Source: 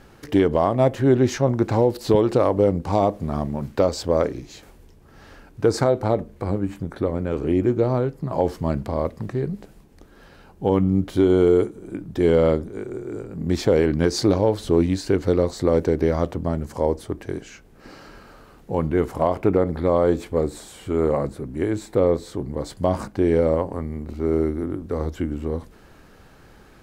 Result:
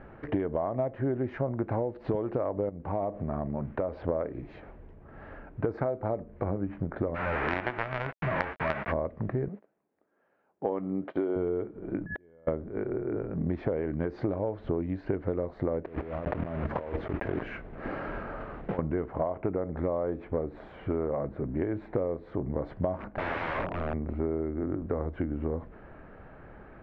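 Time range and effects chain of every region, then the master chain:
2.69–4.08 compressor 2:1, threshold -32 dBFS + LPF 4100 Hz
7.14–8.91 spectral whitening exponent 0.1 + resonant high shelf 3100 Hz -12.5 dB, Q 1.5 + companded quantiser 2-bit
9.48–11.36 gate -38 dBFS, range -21 dB + HPF 310 Hz + high shelf 6400 Hz -5.5 dB
12.06–12.47 whine 1700 Hz -32 dBFS + flipped gate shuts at -21 dBFS, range -42 dB
15.85–18.79 block floating point 3-bit + negative-ratio compressor -32 dBFS
22.98–23.94 bell 150 Hz -12 dB 0.25 oct + wrapped overs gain 24.5 dB
whole clip: LPF 2100 Hz 24 dB/oct; bell 630 Hz +6 dB 0.35 oct; compressor 12:1, threshold -26 dBFS

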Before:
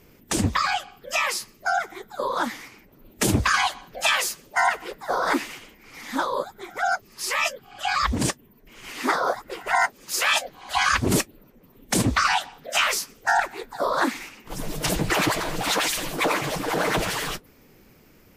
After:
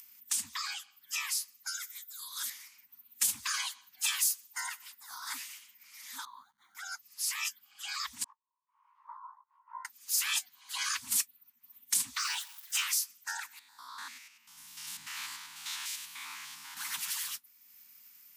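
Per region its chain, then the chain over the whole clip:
1.67–2.5 tilt +3 dB/oct + fixed phaser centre 320 Hz, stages 4
4.01–5.34 rippled Chebyshev high-pass 160 Hz, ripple 3 dB + high shelf 4000 Hz +5.5 dB
6.25–6.75 level-crossing sampler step -47.5 dBFS + running mean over 17 samples
8.24–9.85 Butterworth band-pass 980 Hz, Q 4.7 + doubler 19 ms -2.5 dB
12.19–12.82 zero-crossing step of -39 dBFS + HPF 600 Hz
13.59–16.77 stepped spectrum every 0.1 s + high shelf 6800 Hz -12 dB
whole clip: elliptic band-stop 260–910 Hz, stop band 60 dB; upward compressor, threshold -42 dBFS; differentiator; gain -2.5 dB

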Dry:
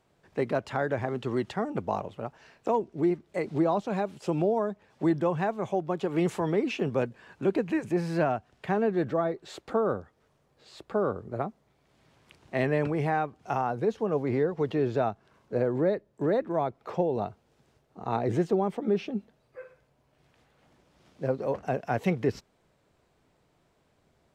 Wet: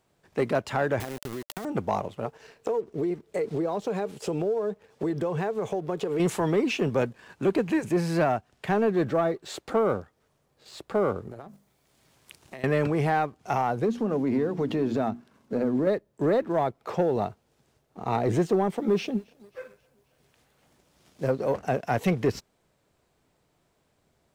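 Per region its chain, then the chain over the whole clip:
1–1.65 sample gate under -32 dBFS + compressor 16:1, threshold -34 dBFS + notch 590 Hz, Q 16
2.25–6.2 bell 450 Hz +14.5 dB 0.25 oct + compressor, threshold -28 dBFS
11.31–12.64 high shelf 5800 Hz +9.5 dB + notches 50/100/150/200/250 Hz + compressor 20:1, threshold -40 dBFS
13.86–15.87 bell 240 Hz +13 dB 0.53 oct + notches 60/120/180/240/300/360 Hz + compressor 2:1, threshold -29 dBFS
18.77–21.31 high shelf 5400 Hz +6 dB + thinning echo 0.267 s, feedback 63%, high-pass 240 Hz, level -23.5 dB
whole clip: high shelf 6400 Hz +8.5 dB; sample leveller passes 1

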